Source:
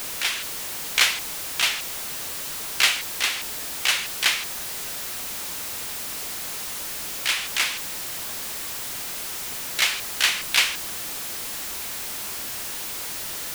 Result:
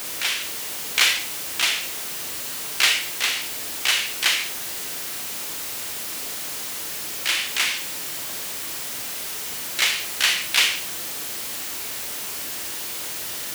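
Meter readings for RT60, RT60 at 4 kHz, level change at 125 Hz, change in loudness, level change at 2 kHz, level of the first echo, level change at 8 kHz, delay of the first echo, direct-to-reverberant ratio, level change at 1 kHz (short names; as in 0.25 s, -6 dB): 0.55 s, 0.40 s, -1.0 dB, +1.5 dB, +1.5 dB, none, +1.5 dB, none, 5.5 dB, 0.0 dB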